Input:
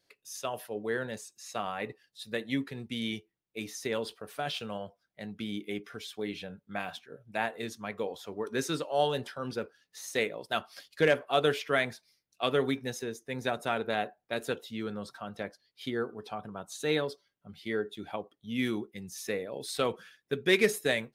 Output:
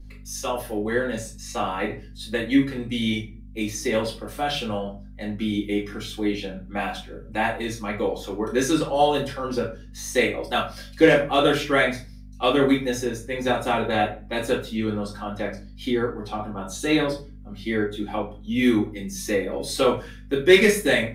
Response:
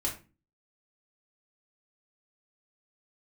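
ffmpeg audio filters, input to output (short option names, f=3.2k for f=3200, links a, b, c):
-filter_complex "[0:a]bandreject=f=50:t=h:w=6,bandreject=f=100:t=h:w=6,bandreject=f=150:t=h:w=6,aeval=exprs='val(0)+0.00251*(sin(2*PI*50*n/s)+sin(2*PI*2*50*n/s)/2+sin(2*PI*3*50*n/s)/3+sin(2*PI*4*50*n/s)/4+sin(2*PI*5*50*n/s)/5)':c=same[a];[1:a]atrim=start_sample=2205,asetrate=40131,aresample=44100[b];[a][b]afir=irnorm=-1:irlink=0,volume=3.5dB"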